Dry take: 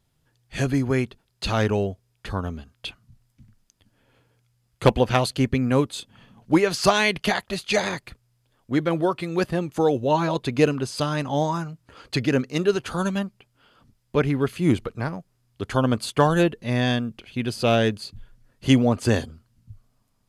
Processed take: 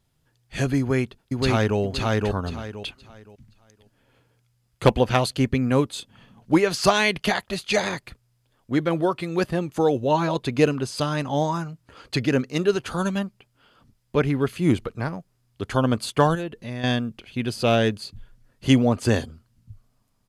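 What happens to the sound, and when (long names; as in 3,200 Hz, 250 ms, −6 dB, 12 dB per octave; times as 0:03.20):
0:00.79–0:01.79: delay throw 520 ms, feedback 25%, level −1 dB
0:16.35–0:16.84: downward compressor 2.5 to 1, threshold −32 dBFS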